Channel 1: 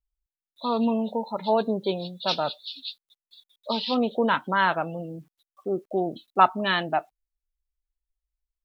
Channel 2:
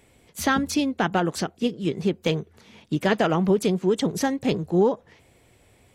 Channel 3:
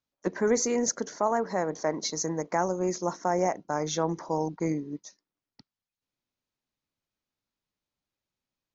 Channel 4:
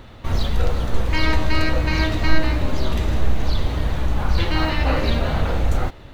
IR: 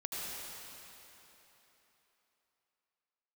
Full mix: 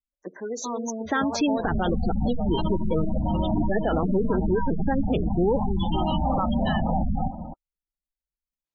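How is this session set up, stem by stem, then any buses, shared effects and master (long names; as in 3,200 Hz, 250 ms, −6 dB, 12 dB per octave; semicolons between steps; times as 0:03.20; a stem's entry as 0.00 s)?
−5.5 dB, 0.00 s, no send, high-shelf EQ 5,000 Hz +11 dB
−5.0 dB, 0.65 s, no send, low-pass that shuts in the quiet parts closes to 1,000 Hz, open at −18 dBFS; automatic gain control gain up to 11.5 dB
−6.5 dB, 0.00 s, no send, no processing
+2.5 dB, 1.40 s, send −13.5 dB, drawn EQ curve 130 Hz 0 dB, 200 Hz +15 dB, 400 Hz −10 dB, 780 Hz +7 dB, 1,300 Hz −3 dB, 2,200 Hz −21 dB, 3,200 Hz +6 dB, 6,900 Hz −27 dB; downward compressor 6 to 1, threshold −18 dBFS, peak gain reduction 11 dB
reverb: on, RT60 3.6 s, pre-delay 71 ms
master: gate on every frequency bin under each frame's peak −20 dB strong; low-shelf EQ 190 Hz −7 dB; brickwall limiter −15 dBFS, peak gain reduction 9.5 dB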